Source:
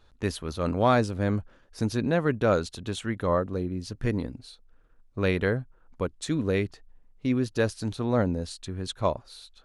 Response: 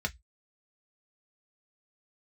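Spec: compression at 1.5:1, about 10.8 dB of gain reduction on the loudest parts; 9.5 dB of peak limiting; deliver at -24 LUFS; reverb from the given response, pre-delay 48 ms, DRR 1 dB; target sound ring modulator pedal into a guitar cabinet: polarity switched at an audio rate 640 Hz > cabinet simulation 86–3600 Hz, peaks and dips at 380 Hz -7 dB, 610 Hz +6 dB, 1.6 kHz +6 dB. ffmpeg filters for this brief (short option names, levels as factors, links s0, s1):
-filter_complex "[0:a]acompressor=threshold=0.00355:ratio=1.5,alimiter=level_in=2:limit=0.0631:level=0:latency=1,volume=0.501,asplit=2[s0][s1];[1:a]atrim=start_sample=2205,adelay=48[s2];[s1][s2]afir=irnorm=-1:irlink=0,volume=0.501[s3];[s0][s3]amix=inputs=2:normalize=0,aeval=exprs='val(0)*sgn(sin(2*PI*640*n/s))':c=same,highpass=86,equalizer=f=380:t=q:w=4:g=-7,equalizer=f=610:t=q:w=4:g=6,equalizer=f=1600:t=q:w=4:g=6,lowpass=f=3600:w=0.5412,lowpass=f=3600:w=1.3066,volume=3.98"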